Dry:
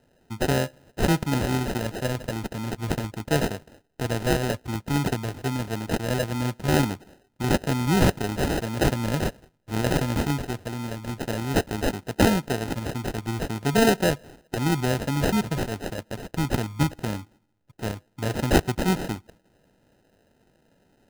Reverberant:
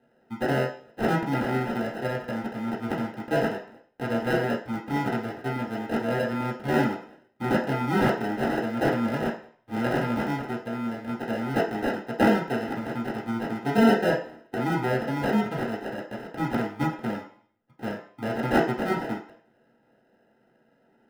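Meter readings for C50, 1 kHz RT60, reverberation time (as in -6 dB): 7.5 dB, 0.55 s, 0.50 s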